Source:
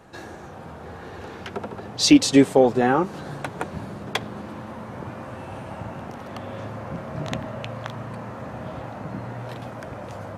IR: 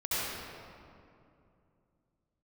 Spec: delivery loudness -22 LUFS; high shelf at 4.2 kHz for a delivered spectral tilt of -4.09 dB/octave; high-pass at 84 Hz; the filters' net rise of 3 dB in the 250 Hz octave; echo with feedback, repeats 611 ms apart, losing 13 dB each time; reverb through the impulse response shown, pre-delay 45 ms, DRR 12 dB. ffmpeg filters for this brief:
-filter_complex "[0:a]highpass=84,equalizer=f=250:t=o:g=3.5,highshelf=f=4200:g=7.5,aecho=1:1:611|1222|1833:0.224|0.0493|0.0108,asplit=2[s0][s1];[1:a]atrim=start_sample=2205,adelay=45[s2];[s1][s2]afir=irnorm=-1:irlink=0,volume=0.0891[s3];[s0][s3]amix=inputs=2:normalize=0,volume=0.794"

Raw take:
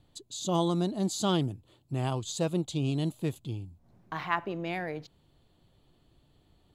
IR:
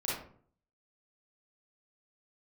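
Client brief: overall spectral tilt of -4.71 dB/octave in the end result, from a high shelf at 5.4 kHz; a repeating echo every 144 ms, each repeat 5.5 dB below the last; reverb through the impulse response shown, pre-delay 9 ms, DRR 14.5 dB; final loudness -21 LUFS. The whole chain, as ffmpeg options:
-filter_complex "[0:a]highshelf=f=5400:g=7,aecho=1:1:144|288|432|576|720|864|1008:0.531|0.281|0.149|0.079|0.0419|0.0222|0.0118,asplit=2[s0][s1];[1:a]atrim=start_sample=2205,adelay=9[s2];[s1][s2]afir=irnorm=-1:irlink=0,volume=0.106[s3];[s0][s3]amix=inputs=2:normalize=0,volume=2.82"

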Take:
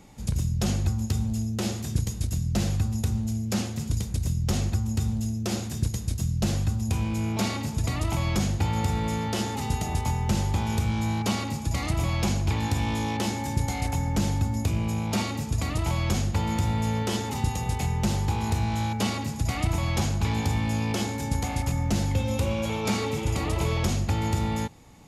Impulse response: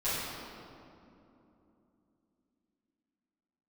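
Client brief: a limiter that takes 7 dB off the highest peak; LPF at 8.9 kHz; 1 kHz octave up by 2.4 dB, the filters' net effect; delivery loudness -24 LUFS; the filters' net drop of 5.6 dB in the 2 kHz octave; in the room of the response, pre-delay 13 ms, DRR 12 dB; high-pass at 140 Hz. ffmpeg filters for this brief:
-filter_complex "[0:a]highpass=140,lowpass=8900,equalizer=f=1000:t=o:g=4.5,equalizer=f=2000:t=o:g=-8,alimiter=limit=0.0841:level=0:latency=1,asplit=2[s0][s1];[1:a]atrim=start_sample=2205,adelay=13[s2];[s1][s2]afir=irnorm=-1:irlink=0,volume=0.0891[s3];[s0][s3]amix=inputs=2:normalize=0,volume=2.24"

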